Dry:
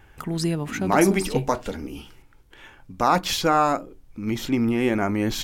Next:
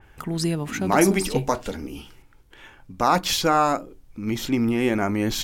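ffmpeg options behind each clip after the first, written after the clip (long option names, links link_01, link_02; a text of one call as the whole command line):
ffmpeg -i in.wav -af "adynamicequalizer=threshold=0.0126:dfrequency=3300:dqfactor=0.7:tfrequency=3300:tqfactor=0.7:attack=5:release=100:ratio=0.375:range=1.5:mode=boostabove:tftype=highshelf" out.wav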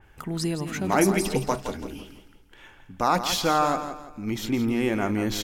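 ffmpeg -i in.wav -af "aecho=1:1:167|334|501|668:0.316|0.108|0.0366|0.0124,volume=-3dB" out.wav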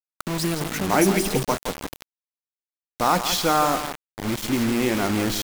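ffmpeg -i in.wav -af "acrusher=bits=4:mix=0:aa=0.000001,volume=2dB" out.wav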